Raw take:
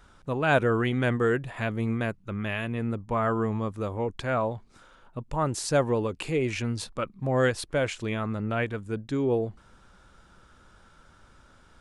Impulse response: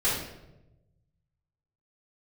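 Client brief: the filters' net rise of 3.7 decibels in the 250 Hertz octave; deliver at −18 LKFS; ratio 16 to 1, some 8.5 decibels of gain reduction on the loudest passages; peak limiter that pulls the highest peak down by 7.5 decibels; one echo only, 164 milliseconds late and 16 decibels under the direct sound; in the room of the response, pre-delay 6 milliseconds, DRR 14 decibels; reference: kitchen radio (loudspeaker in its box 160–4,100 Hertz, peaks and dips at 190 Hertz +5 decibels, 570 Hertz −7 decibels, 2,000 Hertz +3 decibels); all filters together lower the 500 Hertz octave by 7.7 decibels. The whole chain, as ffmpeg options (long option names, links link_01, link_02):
-filter_complex "[0:a]equalizer=frequency=250:width_type=o:gain=6,equalizer=frequency=500:width_type=o:gain=-8.5,acompressor=threshold=-28dB:ratio=16,alimiter=level_in=2.5dB:limit=-24dB:level=0:latency=1,volume=-2.5dB,aecho=1:1:164:0.158,asplit=2[link_01][link_02];[1:a]atrim=start_sample=2205,adelay=6[link_03];[link_02][link_03]afir=irnorm=-1:irlink=0,volume=-25.5dB[link_04];[link_01][link_04]amix=inputs=2:normalize=0,highpass=160,equalizer=frequency=190:width_type=q:width=4:gain=5,equalizer=frequency=570:width_type=q:width=4:gain=-7,equalizer=frequency=2000:width_type=q:width=4:gain=3,lowpass=frequency=4100:width=0.5412,lowpass=frequency=4100:width=1.3066,volume=18dB"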